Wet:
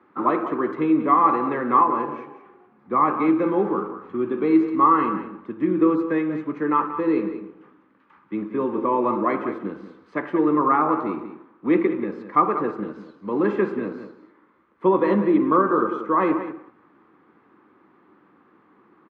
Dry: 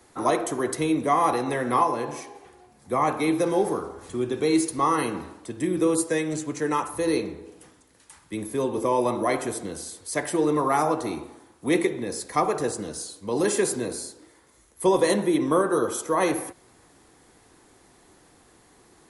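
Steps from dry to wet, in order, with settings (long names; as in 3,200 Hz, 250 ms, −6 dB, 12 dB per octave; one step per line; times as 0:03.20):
in parallel at −11.5 dB: centre clipping without the shift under −32.5 dBFS
on the sum: loudspeaker in its box 200–2,200 Hz, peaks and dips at 200 Hz +7 dB, 310 Hz +4 dB, 480 Hz −3 dB, 690 Hz −9 dB, 1,200 Hz +8 dB, 1,900 Hz −4 dB
slap from a distant wall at 32 metres, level −11 dB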